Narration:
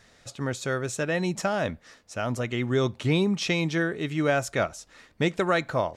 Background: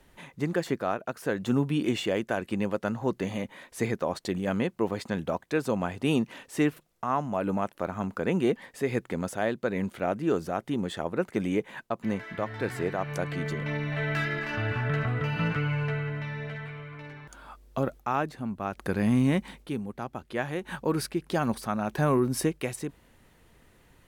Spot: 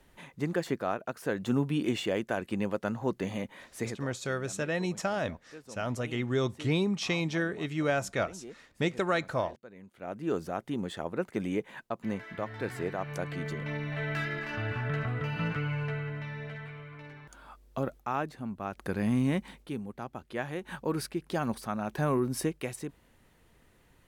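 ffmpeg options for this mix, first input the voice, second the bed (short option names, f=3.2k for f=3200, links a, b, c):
-filter_complex "[0:a]adelay=3600,volume=-4.5dB[a];[1:a]volume=14.5dB,afade=t=out:st=3.69:d=0.39:silence=0.11885,afade=t=in:st=9.92:d=0.43:silence=0.141254[b];[a][b]amix=inputs=2:normalize=0"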